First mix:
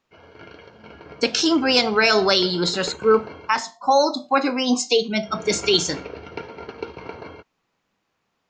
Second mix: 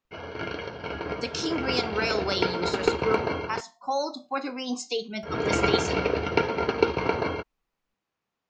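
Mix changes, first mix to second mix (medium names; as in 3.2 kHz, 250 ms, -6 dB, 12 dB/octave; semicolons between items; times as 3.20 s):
speech -11.0 dB; background +10.0 dB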